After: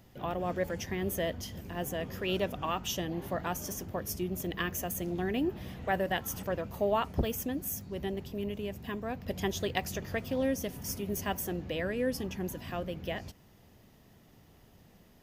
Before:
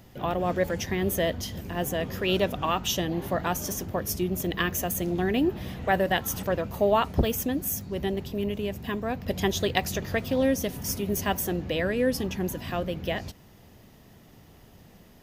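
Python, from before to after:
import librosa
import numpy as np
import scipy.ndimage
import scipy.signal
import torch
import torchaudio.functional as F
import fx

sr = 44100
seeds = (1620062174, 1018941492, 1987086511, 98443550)

y = fx.dynamic_eq(x, sr, hz=3900.0, q=6.0, threshold_db=-55.0, ratio=4.0, max_db=-5)
y = y * 10.0 ** (-6.5 / 20.0)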